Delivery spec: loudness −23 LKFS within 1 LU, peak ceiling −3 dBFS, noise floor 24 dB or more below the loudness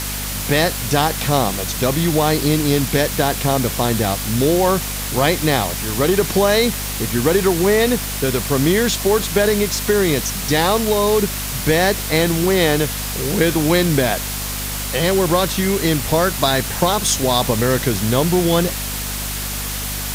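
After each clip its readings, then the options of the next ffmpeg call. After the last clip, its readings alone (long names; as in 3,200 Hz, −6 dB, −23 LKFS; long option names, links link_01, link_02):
mains hum 50 Hz; hum harmonics up to 250 Hz; level of the hum −26 dBFS; background noise floor −25 dBFS; target noise floor −42 dBFS; integrated loudness −17.5 LKFS; sample peak −2.5 dBFS; target loudness −23.0 LKFS
→ -af "bandreject=frequency=50:width_type=h:width=4,bandreject=frequency=100:width_type=h:width=4,bandreject=frequency=150:width_type=h:width=4,bandreject=frequency=200:width_type=h:width=4,bandreject=frequency=250:width_type=h:width=4"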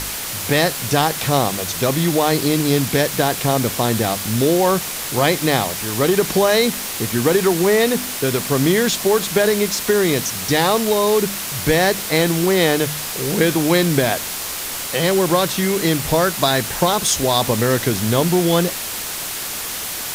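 mains hum none found; background noise floor −27 dBFS; target noise floor −42 dBFS
→ -af "afftdn=noise_reduction=15:noise_floor=-27"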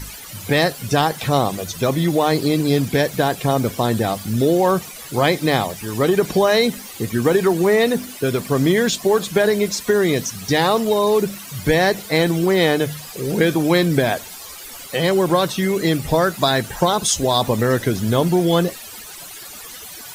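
background noise floor −36 dBFS; target noise floor −43 dBFS
→ -af "afftdn=noise_reduction=7:noise_floor=-36"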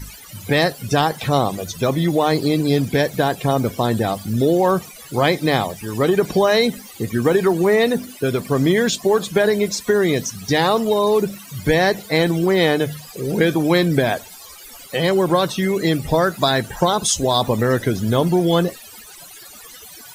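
background noise floor −40 dBFS; target noise floor −43 dBFS
→ -af "afftdn=noise_reduction=6:noise_floor=-40"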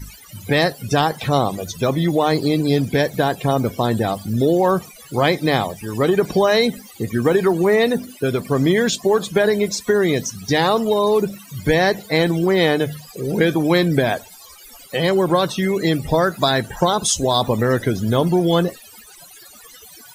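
background noise floor −43 dBFS; integrated loudness −18.5 LKFS; sample peak −2.5 dBFS; target loudness −23.0 LKFS
→ -af "volume=-4.5dB"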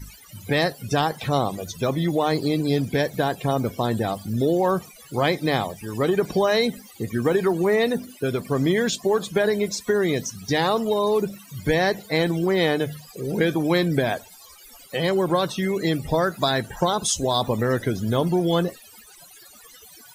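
integrated loudness −23.0 LKFS; sample peak −7.0 dBFS; background noise floor −48 dBFS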